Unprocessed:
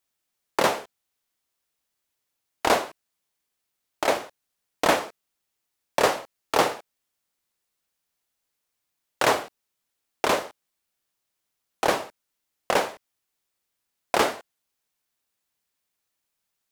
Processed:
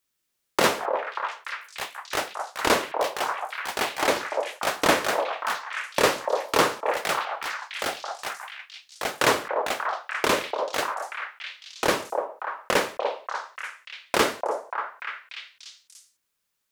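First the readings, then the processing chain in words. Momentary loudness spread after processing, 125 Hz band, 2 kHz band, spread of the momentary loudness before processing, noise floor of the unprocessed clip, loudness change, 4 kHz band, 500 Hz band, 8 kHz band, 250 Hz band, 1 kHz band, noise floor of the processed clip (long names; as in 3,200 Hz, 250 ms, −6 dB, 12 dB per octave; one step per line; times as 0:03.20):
14 LU, +2.5 dB, +4.5 dB, 15 LU, −81 dBFS, −1.0 dB, +4.0 dB, +2.0 dB, +3.5 dB, +2.0 dB, +2.0 dB, −78 dBFS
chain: parametric band 740 Hz −8.5 dB 0.53 octaves
echo through a band-pass that steps 293 ms, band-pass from 690 Hz, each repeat 0.7 octaves, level −0.5 dB
delay with pitch and tempo change per echo 149 ms, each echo +5 semitones, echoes 2, each echo −6 dB
level +2 dB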